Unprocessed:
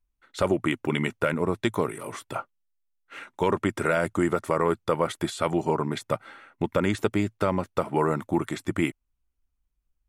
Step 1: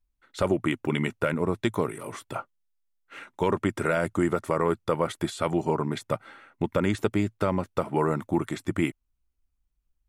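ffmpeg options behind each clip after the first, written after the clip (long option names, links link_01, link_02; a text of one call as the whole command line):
ffmpeg -i in.wav -af "lowshelf=frequency=330:gain=3,volume=-2dB" out.wav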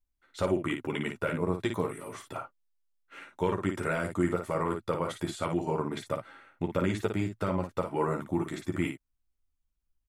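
ffmpeg -i in.wav -af "aecho=1:1:11|56:0.562|0.501,volume=-6dB" out.wav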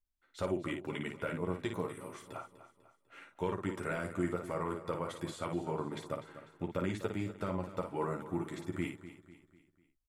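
ffmpeg -i in.wav -af "aecho=1:1:248|496|744|992:0.2|0.0898|0.0404|0.0182,volume=-6.5dB" out.wav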